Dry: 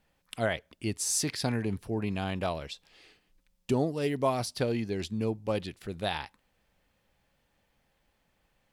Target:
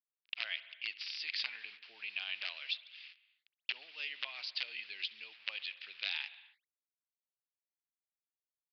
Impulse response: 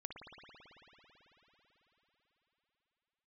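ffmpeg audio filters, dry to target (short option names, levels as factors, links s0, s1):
-filter_complex "[0:a]acompressor=threshold=0.0282:ratio=16,acrusher=bits=8:mix=0:aa=0.000001,aeval=exprs='(mod(17.8*val(0)+1,2)-1)/17.8':c=same,highpass=f=2600:t=q:w=2.7,asplit=2[s0][s1];[1:a]atrim=start_sample=2205,afade=t=out:st=0.35:d=0.01,atrim=end_sample=15876,lowpass=5400[s2];[s1][s2]afir=irnorm=-1:irlink=0,volume=0.531[s3];[s0][s3]amix=inputs=2:normalize=0,aresample=11025,aresample=44100,volume=0.891"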